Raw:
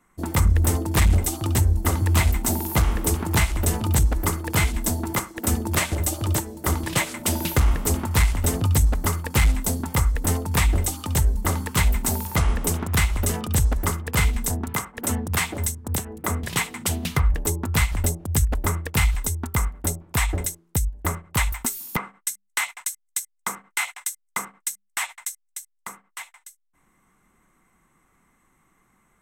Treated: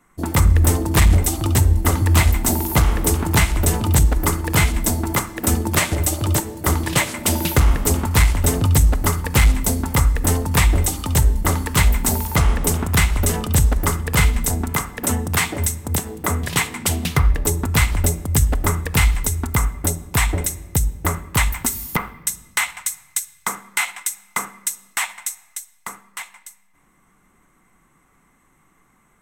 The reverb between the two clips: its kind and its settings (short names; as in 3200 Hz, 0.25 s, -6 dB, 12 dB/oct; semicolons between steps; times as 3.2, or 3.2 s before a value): shoebox room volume 1200 m³, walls mixed, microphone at 0.33 m; gain +4.5 dB